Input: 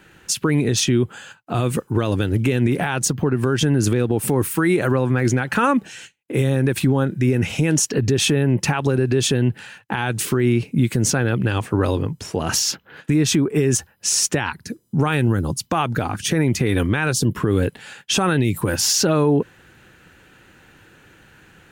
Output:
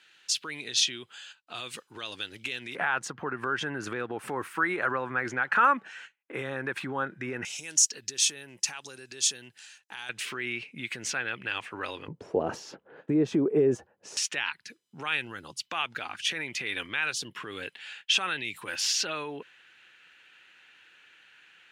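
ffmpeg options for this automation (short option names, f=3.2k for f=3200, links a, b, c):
-af "asetnsamples=n=441:p=0,asendcmd='2.75 bandpass f 1400;7.45 bandpass f 6200;10.09 bandpass f 2400;12.08 bandpass f 510;14.17 bandpass f 2800',bandpass=f=3.8k:t=q:w=1.6:csg=0"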